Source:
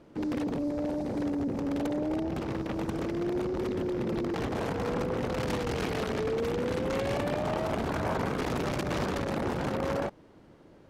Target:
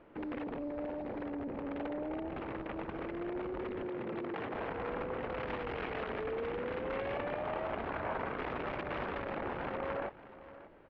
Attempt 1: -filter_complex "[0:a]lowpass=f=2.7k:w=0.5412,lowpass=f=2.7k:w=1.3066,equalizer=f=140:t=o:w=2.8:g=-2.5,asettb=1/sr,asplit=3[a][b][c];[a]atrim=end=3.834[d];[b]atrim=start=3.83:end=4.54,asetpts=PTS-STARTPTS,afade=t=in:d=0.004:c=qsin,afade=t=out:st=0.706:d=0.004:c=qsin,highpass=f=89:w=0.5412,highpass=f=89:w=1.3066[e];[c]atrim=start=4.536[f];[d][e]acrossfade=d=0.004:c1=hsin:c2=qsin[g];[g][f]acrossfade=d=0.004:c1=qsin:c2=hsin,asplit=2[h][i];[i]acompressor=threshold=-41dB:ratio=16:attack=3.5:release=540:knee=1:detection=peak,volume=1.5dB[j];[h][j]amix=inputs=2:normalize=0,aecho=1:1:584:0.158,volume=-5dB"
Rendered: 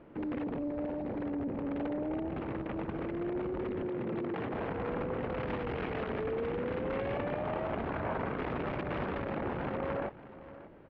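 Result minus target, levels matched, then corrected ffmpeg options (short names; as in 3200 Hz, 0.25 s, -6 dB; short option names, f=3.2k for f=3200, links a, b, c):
125 Hz band +4.5 dB
-filter_complex "[0:a]lowpass=f=2.7k:w=0.5412,lowpass=f=2.7k:w=1.3066,equalizer=f=140:t=o:w=2.8:g=-11.5,asettb=1/sr,asplit=3[a][b][c];[a]atrim=end=3.834[d];[b]atrim=start=3.83:end=4.54,asetpts=PTS-STARTPTS,afade=t=in:d=0.004:c=qsin,afade=t=out:st=0.706:d=0.004:c=qsin,highpass=f=89:w=0.5412,highpass=f=89:w=1.3066[e];[c]atrim=start=4.536[f];[d][e]acrossfade=d=0.004:c1=hsin:c2=qsin[g];[g][f]acrossfade=d=0.004:c1=qsin:c2=hsin,asplit=2[h][i];[i]acompressor=threshold=-41dB:ratio=16:attack=3.5:release=540:knee=1:detection=peak,volume=1.5dB[j];[h][j]amix=inputs=2:normalize=0,aecho=1:1:584:0.158,volume=-5dB"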